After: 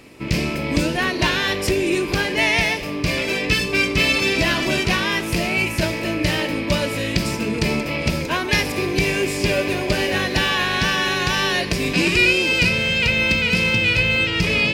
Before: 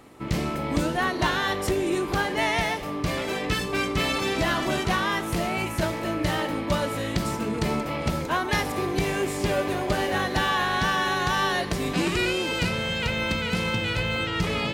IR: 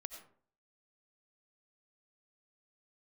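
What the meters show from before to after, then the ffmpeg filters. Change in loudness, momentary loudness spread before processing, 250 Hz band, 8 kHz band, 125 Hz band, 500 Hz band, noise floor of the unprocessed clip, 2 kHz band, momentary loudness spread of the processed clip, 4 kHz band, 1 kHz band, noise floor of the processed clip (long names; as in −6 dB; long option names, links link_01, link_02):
+6.5 dB, 4 LU, +5.0 dB, +6.5 dB, +5.0 dB, +4.5 dB, −31 dBFS, +8.5 dB, 6 LU, +8.0 dB, −0.5 dB, −27 dBFS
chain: -af "equalizer=frequency=800:width_type=o:width=0.33:gain=-8,equalizer=frequency=1250:width_type=o:width=0.33:gain=-8,equalizer=frequency=2500:width_type=o:width=0.33:gain=10,equalizer=frequency=5000:width_type=o:width=0.33:gain=8,volume=5dB"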